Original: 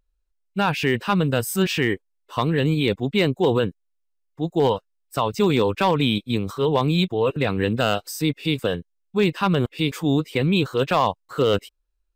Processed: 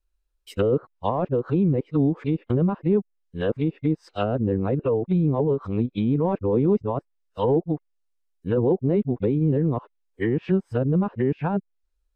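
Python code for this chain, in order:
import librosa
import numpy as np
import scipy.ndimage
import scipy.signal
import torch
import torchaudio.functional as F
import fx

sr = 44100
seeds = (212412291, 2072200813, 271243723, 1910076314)

y = np.flip(x).copy()
y = fx.env_lowpass_down(y, sr, base_hz=550.0, full_db=-17.5)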